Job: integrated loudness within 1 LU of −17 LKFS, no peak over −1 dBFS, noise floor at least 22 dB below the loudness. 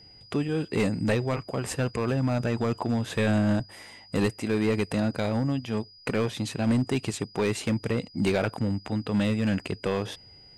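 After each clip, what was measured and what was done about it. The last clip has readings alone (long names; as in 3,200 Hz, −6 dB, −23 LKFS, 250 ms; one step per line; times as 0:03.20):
share of clipped samples 1.7%; peaks flattened at −18.0 dBFS; interfering tone 4,900 Hz; level of the tone −50 dBFS; integrated loudness −28.0 LKFS; sample peak −18.0 dBFS; target loudness −17.0 LKFS
→ clipped peaks rebuilt −18 dBFS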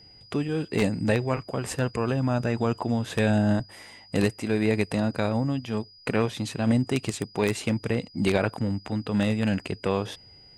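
share of clipped samples 0.0%; interfering tone 4,900 Hz; level of the tone −50 dBFS
→ notch filter 4,900 Hz, Q 30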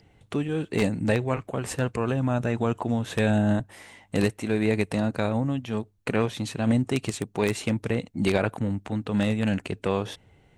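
interfering tone none found; integrated loudness −27.0 LKFS; sample peak −9.0 dBFS; target loudness −17.0 LKFS
→ level +10 dB
brickwall limiter −1 dBFS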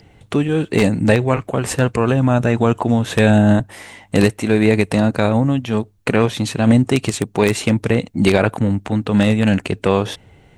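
integrated loudness −17.0 LKFS; sample peak −1.0 dBFS; background noise floor −51 dBFS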